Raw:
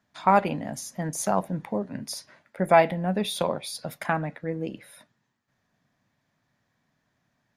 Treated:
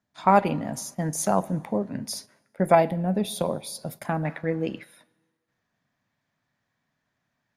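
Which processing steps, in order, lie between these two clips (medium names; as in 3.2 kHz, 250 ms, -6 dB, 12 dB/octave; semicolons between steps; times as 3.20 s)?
plate-style reverb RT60 1.5 s, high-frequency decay 0.75×, DRR 19.5 dB; gate -43 dBFS, range -9 dB; peaking EQ 2 kHz -3.5 dB 2.8 oct, from 2.75 s -10.5 dB, from 4.25 s +3.5 dB; trim +3 dB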